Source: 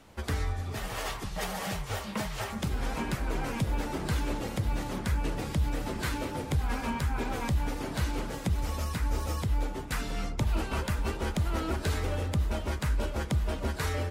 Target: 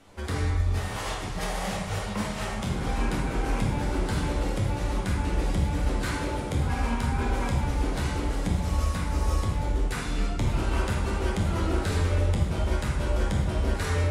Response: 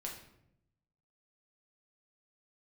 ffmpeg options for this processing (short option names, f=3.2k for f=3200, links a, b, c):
-filter_complex "[1:a]atrim=start_sample=2205,atrim=end_sample=6615,asetrate=22491,aresample=44100[a];[0:a][a]afir=irnorm=-1:irlink=0"